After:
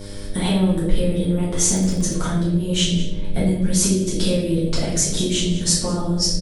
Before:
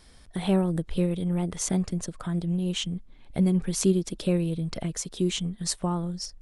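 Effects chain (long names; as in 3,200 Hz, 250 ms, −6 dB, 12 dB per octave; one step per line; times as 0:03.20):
slap from a distant wall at 33 metres, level −16 dB
downward compressor, threshold −33 dBFS, peak gain reduction 15.5 dB
convolution reverb RT60 0.80 s, pre-delay 4 ms, DRR −8.5 dB
hum with harmonics 100 Hz, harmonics 6, −43 dBFS −3 dB per octave
high-shelf EQ 4,600 Hz +6 dB
0:01.54–0:02.14: surface crackle 63 per second −32 dBFS
level +6 dB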